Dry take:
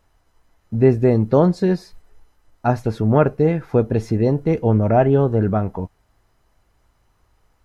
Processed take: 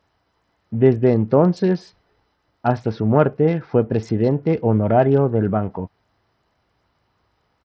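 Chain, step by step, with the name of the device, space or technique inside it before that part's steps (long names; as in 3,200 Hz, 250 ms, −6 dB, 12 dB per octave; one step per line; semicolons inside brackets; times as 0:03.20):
Bluetooth headset (high-pass filter 100 Hz 12 dB per octave; downsampling to 16,000 Hz; SBC 64 kbit/s 44,100 Hz)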